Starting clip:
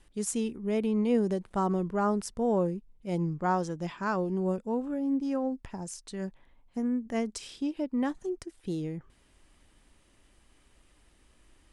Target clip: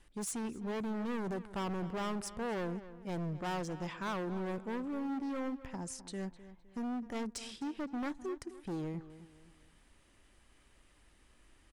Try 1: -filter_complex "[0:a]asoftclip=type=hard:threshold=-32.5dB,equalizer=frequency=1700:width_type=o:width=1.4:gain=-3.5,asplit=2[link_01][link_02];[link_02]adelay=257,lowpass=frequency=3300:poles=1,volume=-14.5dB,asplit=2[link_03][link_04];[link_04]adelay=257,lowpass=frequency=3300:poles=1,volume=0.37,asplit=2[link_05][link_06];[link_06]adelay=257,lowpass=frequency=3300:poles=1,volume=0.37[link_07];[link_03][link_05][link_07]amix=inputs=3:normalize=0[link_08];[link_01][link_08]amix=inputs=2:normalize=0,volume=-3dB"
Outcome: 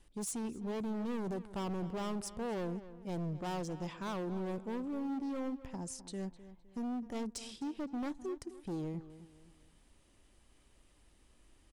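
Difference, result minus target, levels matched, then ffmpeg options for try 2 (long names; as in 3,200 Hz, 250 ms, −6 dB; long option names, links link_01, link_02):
2,000 Hz band −5.0 dB
-filter_complex "[0:a]asoftclip=type=hard:threshold=-32.5dB,equalizer=frequency=1700:width_type=o:width=1.4:gain=3,asplit=2[link_01][link_02];[link_02]adelay=257,lowpass=frequency=3300:poles=1,volume=-14.5dB,asplit=2[link_03][link_04];[link_04]adelay=257,lowpass=frequency=3300:poles=1,volume=0.37,asplit=2[link_05][link_06];[link_06]adelay=257,lowpass=frequency=3300:poles=1,volume=0.37[link_07];[link_03][link_05][link_07]amix=inputs=3:normalize=0[link_08];[link_01][link_08]amix=inputs=2:normalize=0,volume=-3dB"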